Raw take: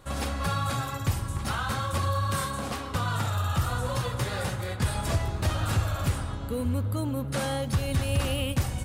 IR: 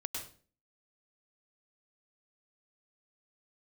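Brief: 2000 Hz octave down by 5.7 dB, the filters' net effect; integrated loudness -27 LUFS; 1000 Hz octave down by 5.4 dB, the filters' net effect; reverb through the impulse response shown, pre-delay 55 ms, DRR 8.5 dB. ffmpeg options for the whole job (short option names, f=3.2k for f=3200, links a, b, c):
-filter_complex "[0:a]equalizer=f=1k:t=o:g=-5,equalizer=f=2k:t=o:g=-6,asplit=2[a][b];[1:a]atrim=start_sample=2205,adelay=55[c];[b][c]afir=irnorm=-1:irlink=0,volume=-9dB[d];[a][d]amix=inputs=2:normalize=0,volume=2.5dB"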